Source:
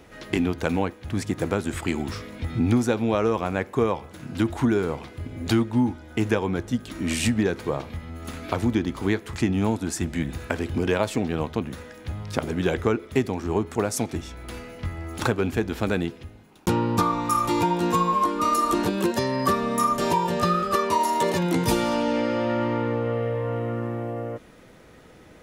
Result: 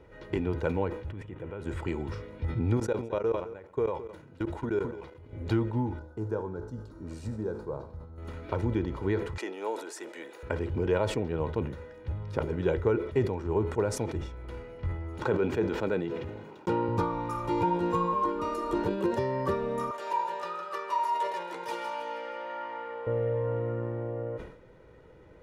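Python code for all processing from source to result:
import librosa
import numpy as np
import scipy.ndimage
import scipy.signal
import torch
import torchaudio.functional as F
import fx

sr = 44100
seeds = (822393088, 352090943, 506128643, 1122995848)

y = fx.chain(x, sr, fx.high_shelf_res(hz=3700.0, db=-7.0, q=3.0),
    fx.level_steps(step_db=17), at=(1.11, 1.62))
y = fx.chain(y, sr, fx.bass_treble(bass_db=-5, treble_db=3),
    fx.level_steps(step_db=23),
    fx.echo_single(ms=215, db=-14.5), at=(2.77, 5.33))
y = fx.chain(y, sr, fx.band_shelf(hz=2500.0, db=-14.5, octaves=1.1),
    fx.comb_fb(f0_hz=54.0, decay_s=1.0, harmonics='all', damping=0.0, mix_pct=60), at=(5.99, 8.18))
y = fx.chain(y, sr, fx.highpass(hz=400.0, slope=24),
    fx.high_shelf(hz=4800.0, db=9.5), at=(9.38, 10.43))
y = fx.chain(y, sr, fx.highpass(hz=170.0, slope=12),
    fx.peak_eq(hz=11000.0, db=-12.5, octaves=0.26),
    fx.sustainer(db_per_s=33.0), at=(15.22, 16.89))
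y = fx.chain(y, sr, fx.highpass(hz=860.0, slope=12),
    fx.echo_feedback(ms=159, feedback_pct=44, wet_db=-9.0), at=(19.91, 23.07))
y = fx.lowpass(y, sr, hz=1000.0, slope=6)
y = y + 0.53 * np.pad(y, (int(2.1 * sr / 1000.0), 0))[:len(y)]
y = fx.sustainer(y, sr, db_per_s=85.0)
y = y * librosa.db_to_amplitude(-4.5)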